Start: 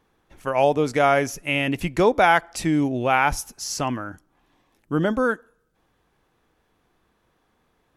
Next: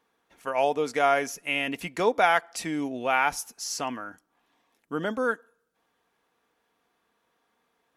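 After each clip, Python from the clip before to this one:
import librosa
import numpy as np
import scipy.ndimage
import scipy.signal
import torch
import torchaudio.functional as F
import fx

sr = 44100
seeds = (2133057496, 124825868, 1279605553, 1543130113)

y = fx.highpass(x, sr, hz=470.0, slope=6)
y = y + 0.32 * np.pad(y, (int(4.3 * sr / 1000.0), 0))[:len(y)]
y = F.gain(torch.from_numpy(y), -3.5).numpy()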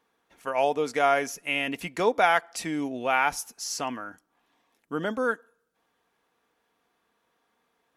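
y = x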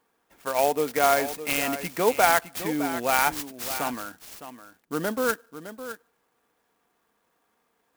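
y = x + 10.0 ** (-12.0 / 20.0) * np.pad(x, (int(611 * sr / 1000.0), 0))[:len(x)]
y = fx.clock_jitter(y, sr, seeds[0], jitter_ms=0.053)
y = F.gain(torch.from_numpy(y), 1.5).numpy()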